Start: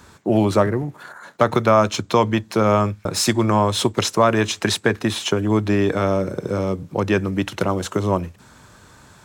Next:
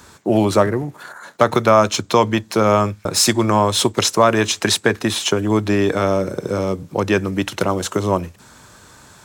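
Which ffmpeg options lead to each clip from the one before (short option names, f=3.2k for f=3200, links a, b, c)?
-af "bass=f=250:g=-3,treble=f=4k:g=4,volume=2.5dB"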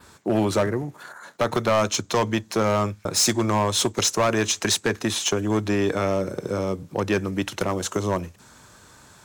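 -af "adynamicequalizer=threshold=0.0141:dfrequency=6400:dqfactor=3.3:tfrequency=6400:tqfactor=3.3:attack=5:release=100:ratio=0.375:range=3:mode=boostabove:tftype=bell,asoftclip=type=hard:threshold=-10dB,volume=-5dB"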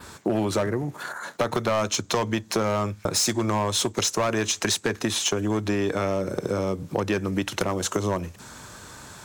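-af "acompressor=threshold=-30dB:ratio=4,volume=7dB"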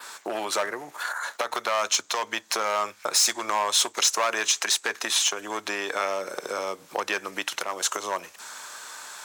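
-af "highpass=840,alimiter=limit=-16dB:level=0:latency=1:release=277,volume=4.5dB"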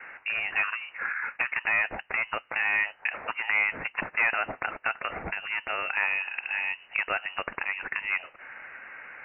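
-af "lowpass=f=2.6k:t=q:w=0.5098,lowpass=f=2.6k:t=q:w=0.6013,lowpass=f=2.6k:t=q:w=0.9,lowpass=f=2.6k:t=q:w=2.563,afreqshift=-3100"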